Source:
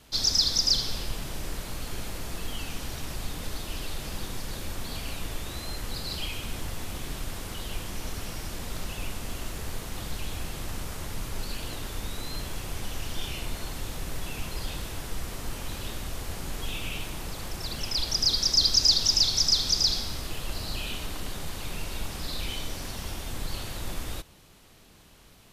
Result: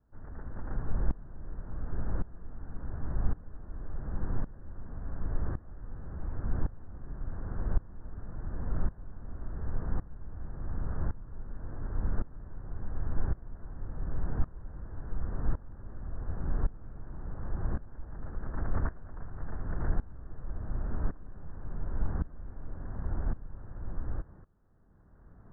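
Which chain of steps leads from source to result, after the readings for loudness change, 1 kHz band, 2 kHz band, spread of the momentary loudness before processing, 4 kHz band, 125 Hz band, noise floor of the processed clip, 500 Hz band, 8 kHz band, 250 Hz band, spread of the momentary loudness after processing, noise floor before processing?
-10.0 dB, -7.0 dB, -13.5 dB, 16 LU, under -40 dB, +1.0 dB, -53 dBFS, -6.0 dB, under -40 dB, -2.5 dB, 11 LU, -54 dBFS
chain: CVSD coder 64 kbps; steep low-pass 1.7 kHz 72 dB/octave; bass shelf 250 Hz +11 dB; sawtooth tremolo in dB swelling 0.9 Hz, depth 20 dB; trim -2 dB

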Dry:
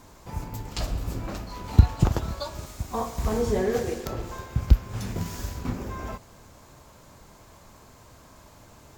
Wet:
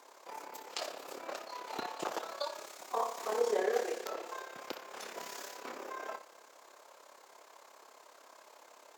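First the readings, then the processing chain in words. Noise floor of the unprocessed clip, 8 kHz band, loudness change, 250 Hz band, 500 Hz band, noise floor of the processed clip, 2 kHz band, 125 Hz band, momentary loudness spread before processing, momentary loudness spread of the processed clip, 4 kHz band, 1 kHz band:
-52 dBFS, -5.5 dB, -11.0 dB, -18.0 dB, -5.0 dB, -60 dBFS, -3.0 dB, under -40 dB, 14 LU, 23 LU, -4.0 dB, -3.0 dB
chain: flutter echo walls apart 11.2 m, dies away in 0.34 s; AM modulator 34 Hz, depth 50%; high-pass 430 Hz 24 dB/octave; treble shelf 7.1 kHz -6 dB

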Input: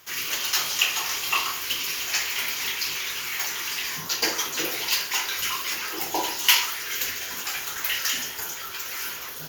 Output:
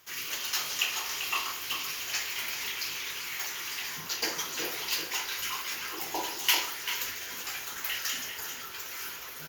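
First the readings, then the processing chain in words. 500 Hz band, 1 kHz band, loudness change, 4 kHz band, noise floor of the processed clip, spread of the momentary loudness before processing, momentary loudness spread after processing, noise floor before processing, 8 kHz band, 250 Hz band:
-6.0 dB, -6.0 dB, -6.5 dB, -6.5 dB, -42 dBFS, 7 LU, 7 LU, -36 dBFS, -7.0 dB, -6.5 dB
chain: echo from a far wall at 67 m, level -6 dB; trim -7 dB

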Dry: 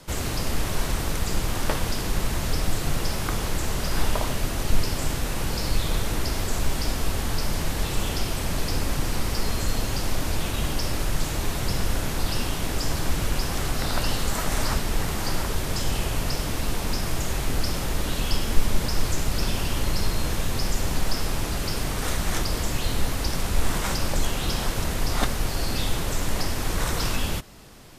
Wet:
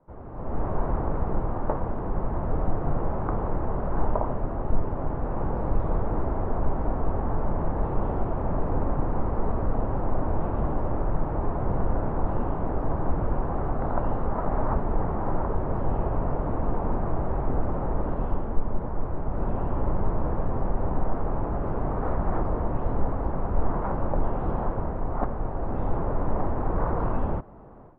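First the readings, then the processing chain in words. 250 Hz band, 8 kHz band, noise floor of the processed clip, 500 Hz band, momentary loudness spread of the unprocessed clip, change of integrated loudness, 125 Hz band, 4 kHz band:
+0.5 dB, under -40 dB, -31 dBFS, +3.0 dB, 2 LU, -2.0 dB, -0.5 dB, under -35 dB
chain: low-pass 1 kHz 24 dB/octave; bass shelf 480 Hz -7.5 dB; level rider gain up to 16.5 dB; trim -8.5 dB

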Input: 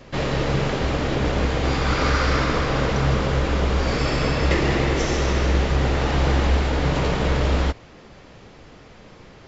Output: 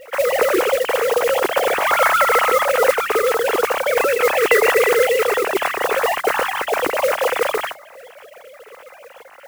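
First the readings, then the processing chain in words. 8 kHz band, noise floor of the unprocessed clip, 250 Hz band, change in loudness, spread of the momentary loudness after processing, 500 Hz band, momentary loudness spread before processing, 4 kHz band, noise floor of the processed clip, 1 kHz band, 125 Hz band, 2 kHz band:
no reading, -46 dBFS, -8.0 dB, +4.5 dB, 6 LU, +9.0 dB, 3 LU, +2.0 dB, -43 dBFS, +7.5 dB, under -25 dB, +7.5 dB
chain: formants replaced by sine waves; modulation noise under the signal 14 dB; trim +2.5 dB

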